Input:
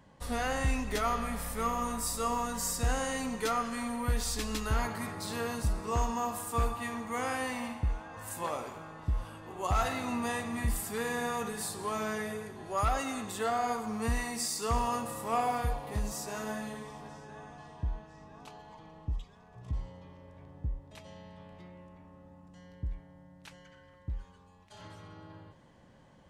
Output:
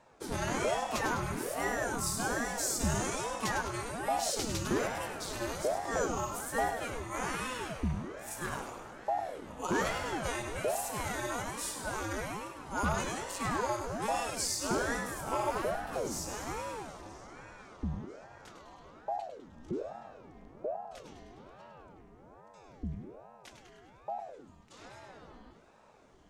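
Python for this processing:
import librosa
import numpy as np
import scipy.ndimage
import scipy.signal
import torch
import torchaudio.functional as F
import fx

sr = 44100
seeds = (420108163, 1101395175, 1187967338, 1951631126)

y = fx.peak_eq(x, sr, hz=6300.0, db=6.0, octaves=0.67)
y = fx.echo_feedback(y, sr, ms=102, feedback_pct=54, wet_db=-8.0)
y = fx.ring_lfo(y, sr, carrier_hz=440.0, swing_pct=75, hz=1.2)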